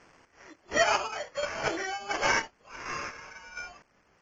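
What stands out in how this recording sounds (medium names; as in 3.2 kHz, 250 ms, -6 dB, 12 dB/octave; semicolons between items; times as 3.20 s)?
a quantiser's noise floor 10-bit, dither triangular; chopped level 1.4 Hz, depth 65%, duty 35%; aliases and images of a low sample rate 3.8 kHz, jitter 0%; AAC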